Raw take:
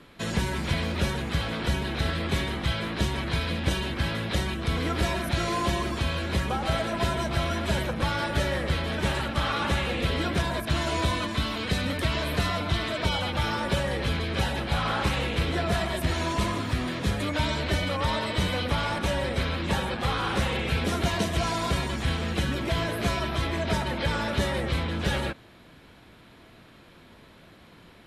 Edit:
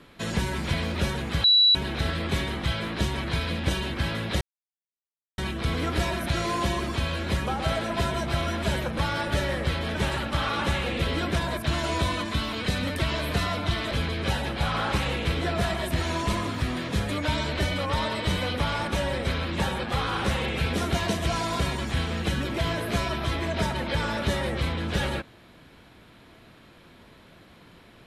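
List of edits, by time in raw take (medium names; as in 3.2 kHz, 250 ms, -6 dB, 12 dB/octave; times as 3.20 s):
1.44–1.75 s: bleep 3.93 kHz -14.5 dBFS
4.41 s: insert silence 0.97 s
12.94–14.02 s: delete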